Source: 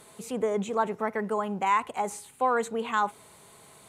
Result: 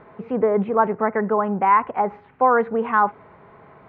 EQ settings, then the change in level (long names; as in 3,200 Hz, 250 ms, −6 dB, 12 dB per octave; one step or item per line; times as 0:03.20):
inverse Chebyshev low-pass filter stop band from 7,700 Hz, stop band 70 dB
+8.5 dB